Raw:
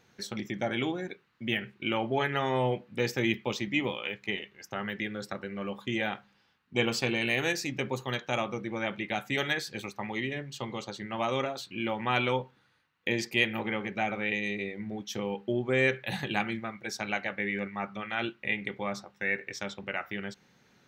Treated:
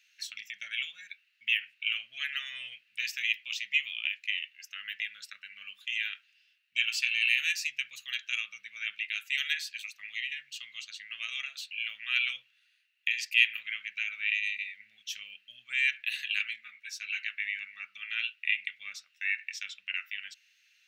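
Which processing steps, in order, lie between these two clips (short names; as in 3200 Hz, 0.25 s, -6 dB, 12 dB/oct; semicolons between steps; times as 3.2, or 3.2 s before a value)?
inverse Chebyshev high-pass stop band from 950 Hz, stop band 40 dB; bell 2700 Hz +12 dB 0.22 oct; 16.56–17.19 ensemble effect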